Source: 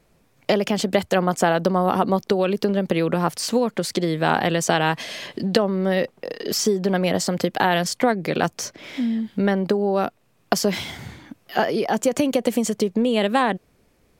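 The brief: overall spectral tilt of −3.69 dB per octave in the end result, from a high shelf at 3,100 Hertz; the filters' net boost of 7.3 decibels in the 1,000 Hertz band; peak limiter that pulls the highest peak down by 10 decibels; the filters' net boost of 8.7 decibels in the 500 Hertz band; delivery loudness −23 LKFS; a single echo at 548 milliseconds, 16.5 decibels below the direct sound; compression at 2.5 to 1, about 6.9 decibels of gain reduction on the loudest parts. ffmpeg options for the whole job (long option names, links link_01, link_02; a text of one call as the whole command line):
ffmpeg -i in.wav -af "equalizer=frequency=500:width_type=o:gain=9,equalizer=frequency=1000:width_type=o:gain=5,highshelf=frequency=3100:gain=8.5,acompressor=threshold=-17dB:ratio=2.5,alimiter=limit=-10dB:level=0:latency=1,aecho=1:1:548:0.15,volume=-1dB" out.wav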